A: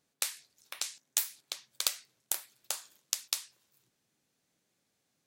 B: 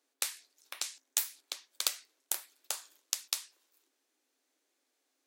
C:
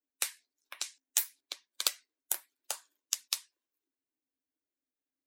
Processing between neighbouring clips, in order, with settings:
Chebyshev high-pass 260 Hz, order 6
expander on every frequency bin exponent 1.5; trim +3 dB

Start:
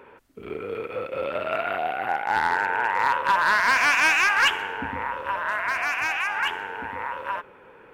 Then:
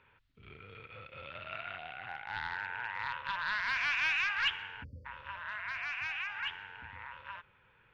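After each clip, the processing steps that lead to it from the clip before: FFT filter 120 Hz 0 dB, 350 Hz -24 dB, 1.5 kHz -8 dB, 3.7 kHz -1 dB, 9.5 kHz -29 dB; spectral selection erased 4.83–5.06 s, 620–4400 Hz; peaking EQ 350 Hz +5.5 dB 0.25 oct; trim -5.5 dB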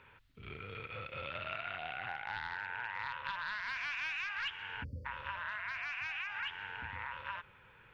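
compression 6:1, threshold -42 dBFS, peak gain reduction 14.5 dB; trim +5.5 dB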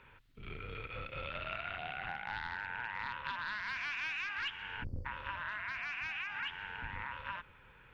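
octave divider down 2 oct, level +2 dB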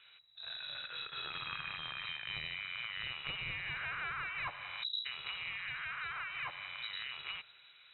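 level-controlled noise filter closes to 2.3 kHz, open at -36 dBFS; frequency inversion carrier 3.9 kHz; resonant low shelf 180 Hz +7.5 dB, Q 3; trim -1 dB

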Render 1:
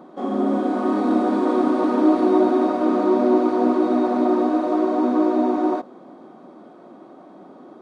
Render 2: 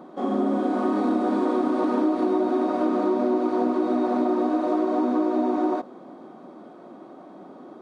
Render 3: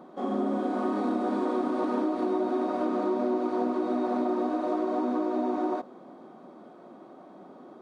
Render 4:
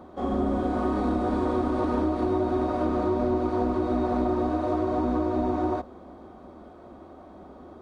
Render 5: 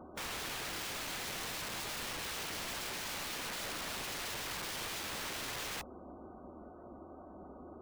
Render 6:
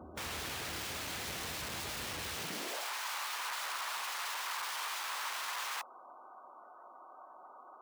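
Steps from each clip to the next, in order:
compression, threshold -19 dBFS, peak gain reduction 7.5 dB
peaking EQ 300 Hz -3 dB 0.31 oct; trim -4 dB
octave divider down 2 oct, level -5 dB; trim +2 dB
integer overflow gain 31 dB; spectral gate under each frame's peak -25 dB strong; trim -5 dB
high-pass sweep 68 Hz -> 1 kHz, 2.30–2.90 s

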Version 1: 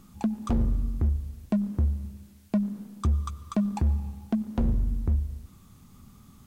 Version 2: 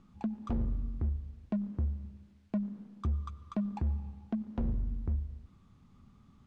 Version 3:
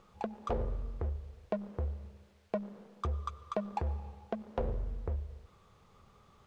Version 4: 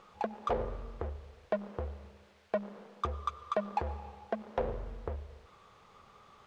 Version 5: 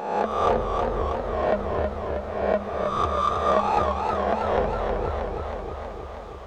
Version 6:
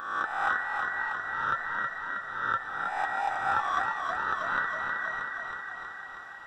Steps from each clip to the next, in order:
Bessel low-pass 3 kHz, order 2; trim -7.5 dB
resonant low shelf 350 Hz -9.5 dB, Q 3; trim +6.5 dB
overdrive pedal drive 13 dB, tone 3.6 kHz, clips at -18 dBFS
reverse spectral sustain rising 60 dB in 1.02 s; modulated delay 318 ms, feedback 71%, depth 74 cents, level -4.5 dB; trim +6 dB
every band turned upside down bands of 2 kHz; trim -6.5 dB

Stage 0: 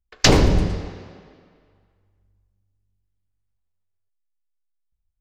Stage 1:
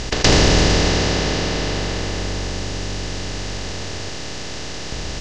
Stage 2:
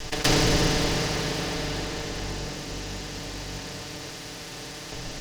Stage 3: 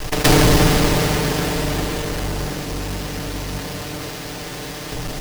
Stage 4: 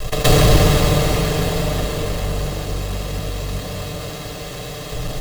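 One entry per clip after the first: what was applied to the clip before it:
spectral levelling over time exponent 0.2; low-pass 8.9 kHz 24 dB/octave; trim -3.5 dB
comb filter that takes the minimum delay 6.7 ms; trim -6 dB
square wave that keeps the level; trim +3.5 dB
reverberation RT60 1.2 s, pre-delay 86 ms, DRR 6.5 dB; trim -5.5 dB

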